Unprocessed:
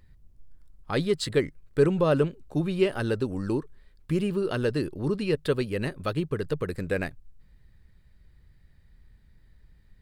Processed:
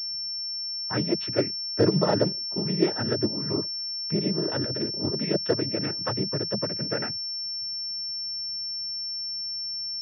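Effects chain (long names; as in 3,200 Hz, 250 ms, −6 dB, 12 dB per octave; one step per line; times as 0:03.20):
cochlear-implant simulation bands 12
0:04.55–0:05.20: compressor whose output falls as the input rises −28 dBFS, ratio −0.5
switching amplifier with a slow clock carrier 5,400 Hz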